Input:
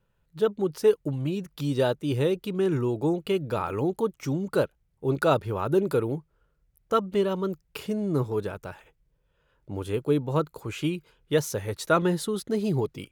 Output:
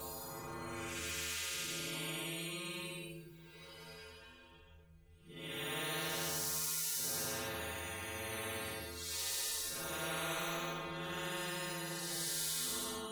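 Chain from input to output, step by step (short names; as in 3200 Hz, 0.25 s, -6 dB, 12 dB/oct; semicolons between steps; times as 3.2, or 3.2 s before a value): Paulstretch 7.6×, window 0.10 s, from 10.58; metallic resonator 80 Hz, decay 0.6 s, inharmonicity 0.008; spectral compressor 4:1; gain -8.5 dB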